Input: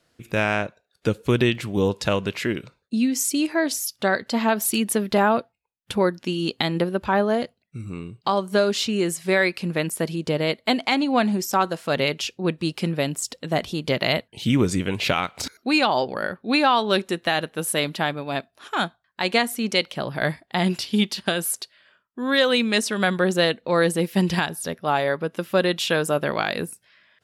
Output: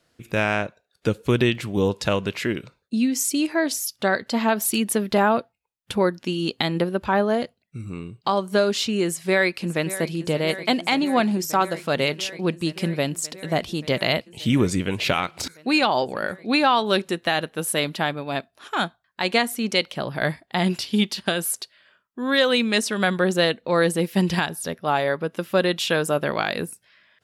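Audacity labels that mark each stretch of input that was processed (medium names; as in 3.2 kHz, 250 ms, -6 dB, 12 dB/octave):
9.040000	10.150000	echo throw 580 ms, feedback 85%, level -14 dB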